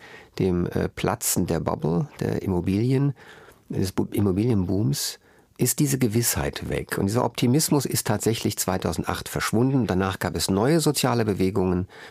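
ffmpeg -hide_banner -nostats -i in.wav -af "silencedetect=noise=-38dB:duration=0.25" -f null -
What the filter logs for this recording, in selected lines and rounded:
silence_start: 5.15
silence_end: 5.56 | silence_duration: 0.41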